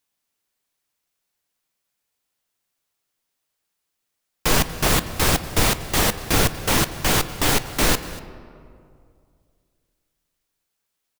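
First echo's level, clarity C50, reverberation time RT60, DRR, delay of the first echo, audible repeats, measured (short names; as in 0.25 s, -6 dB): -19.0 dB, 12.5 dB, 2.3 s, 11.0 dB, 0.239 s, 1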